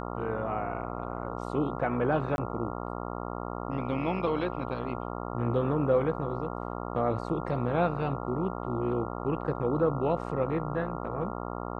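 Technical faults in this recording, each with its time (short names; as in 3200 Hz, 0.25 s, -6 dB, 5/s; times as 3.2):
buzz 60 Hz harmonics 23 -36 dBFS
2.36–2.38 gap 21 ms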